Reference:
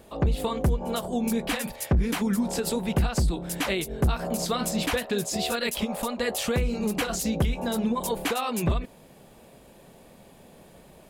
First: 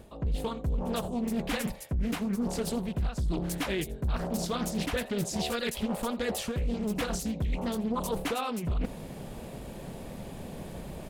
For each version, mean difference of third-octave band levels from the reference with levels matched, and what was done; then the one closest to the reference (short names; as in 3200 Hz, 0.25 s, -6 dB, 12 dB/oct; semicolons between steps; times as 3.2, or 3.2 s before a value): 5.5 dB: low shelf 220 Hz +9.5 dB; reverse; compressor 12:1, threshold -34 dBFS, peak gain reduction 23 dB; reverse; echo 83 ms -20 dB; Doppler distortion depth 0.49 ms; gain +6.5 dB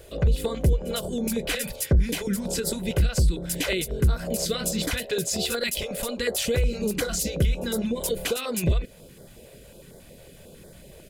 4.0 dB: bell 960 Hz -14 dB 0.59 oct; comb 2 ms, depth 38%; in parallel at -0.5 dB: compressor, threshold -33 dBFS, peak gain reduction 15 dB; on the sum: stepped notch 11 Hz 220–2700 Hz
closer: second